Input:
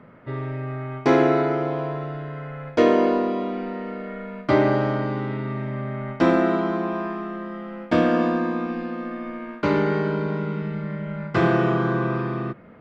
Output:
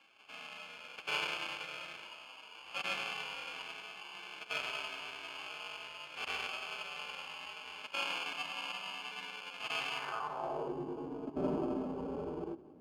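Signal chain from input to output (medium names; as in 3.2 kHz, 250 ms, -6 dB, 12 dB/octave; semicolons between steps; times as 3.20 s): time reversed locally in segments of 98 ms; steep high-pass 180 Hz 36 dB/octave; spectral gate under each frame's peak -20 dB weak; in parallel at +2.5 dB: compression, threshold -46 dBFS, peak gain reduction 16 dB; on the sum: sample-and-hold 23×; harmonic-percussive split percussive -17 dB; band-pass sweep 2.5 kHz -> 320 Hz, 9.93–10.80 s; on a send at -20 dB: reverberation RT60 1.6 s, pre-delay 12 ms; on the sum: trim +13.5 dB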